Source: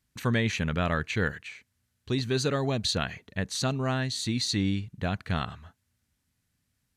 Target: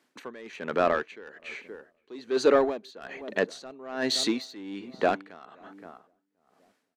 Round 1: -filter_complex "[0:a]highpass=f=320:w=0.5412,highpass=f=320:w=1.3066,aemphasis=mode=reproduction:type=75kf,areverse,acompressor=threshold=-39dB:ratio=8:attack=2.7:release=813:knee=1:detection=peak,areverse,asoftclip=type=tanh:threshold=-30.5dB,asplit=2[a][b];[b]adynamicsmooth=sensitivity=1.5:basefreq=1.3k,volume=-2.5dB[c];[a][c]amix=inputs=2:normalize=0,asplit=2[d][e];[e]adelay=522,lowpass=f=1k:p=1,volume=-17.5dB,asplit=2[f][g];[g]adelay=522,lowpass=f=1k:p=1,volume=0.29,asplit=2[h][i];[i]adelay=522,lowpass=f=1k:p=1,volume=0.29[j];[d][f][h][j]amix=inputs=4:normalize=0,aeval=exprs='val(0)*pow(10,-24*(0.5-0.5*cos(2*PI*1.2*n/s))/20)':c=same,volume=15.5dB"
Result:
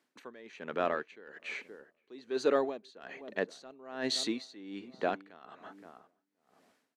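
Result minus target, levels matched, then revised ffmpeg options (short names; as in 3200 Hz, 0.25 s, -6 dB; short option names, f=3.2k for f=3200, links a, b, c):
compressor: peak gain reduction +9 dB
-filter_complex "[0:a]highpass=f=320:w=0.5412,highpass=f=320:w=1.3066,aemphasis=mode=reproduction:type=75kf,areverse,acompressor=threshold=-29dB:ratio=8:attack=2.7:release=813:knee=1:detection=peak,areverse,asoftclip=type=tanh:threshold=-30.5dB,asplit=2[a][b];[b]adynamicsmooth=sensitivity=1.5:basefreq=1.3k,volume=-2.5dB[c];[a][c]amix=inputs=2:normalize=0,asplit=2[d][e];[e]adelay=522,lowpass=f=1k:p=1,volume=-17.5dB,asplit=2[f][g];[g]adelay=522,lowpass=f=1k:p=1,volume=0.29,asplit=2[h][i];[i]adelay=522,lowpass=f=1k:p=1,volume=0.29[j];[d][f][h][j]amix=inputs=4:normalize=0,aeval=exprs='val(0)*pow(10,-24*(0.5-0.5*cos(2*PI*1.2*n/s))/20)':c=same,volume=15.5dB"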